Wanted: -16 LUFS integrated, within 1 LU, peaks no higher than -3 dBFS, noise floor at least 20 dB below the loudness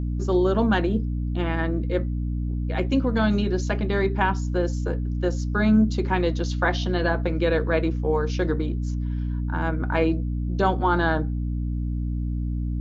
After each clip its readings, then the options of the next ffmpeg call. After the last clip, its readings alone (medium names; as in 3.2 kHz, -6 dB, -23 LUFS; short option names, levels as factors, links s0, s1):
hum 60 Hz; highest harmonic 300 Hz; hum level -24 dBFS; loudness -24.5 LUFS; peak level -6.0 dBFS; loudness target -16.0 LUFS
-> -af "bandreject=f=60:t=h:w=6,bandreject=f=120:t=h:w=6,bandreject=f=180:t=h:w=6,bandreject=f=240:t=h:w=6,bandreject=f=300:t=h:w=6"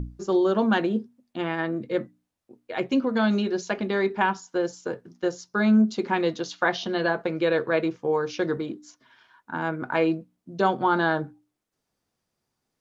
hum not found; loudness -25.5 LUFS; peak level -7.5 dBFS; loudness target -16.0 LUFS
-> -af "volume=2.99,alimiter=limit=0.708:level=0:latency=1"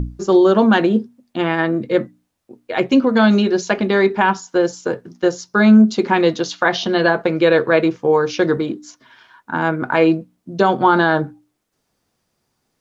loudness -16.5 LUFS; peak level -3.0 dBFS; noise floor -72 dBFS